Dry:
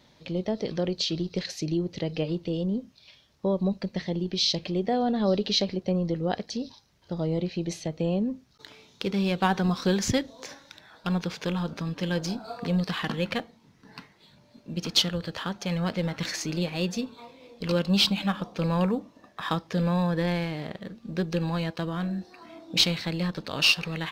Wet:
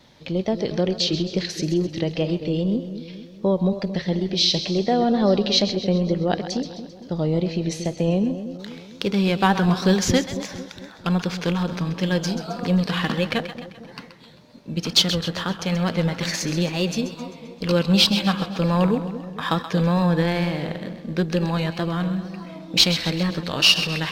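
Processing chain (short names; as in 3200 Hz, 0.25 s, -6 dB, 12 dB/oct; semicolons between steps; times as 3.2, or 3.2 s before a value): split-band echo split 640 Hz, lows 0.226 s, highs 0.131 s, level -11 dB; wow and flutter 45 cents; gain +5.5 dB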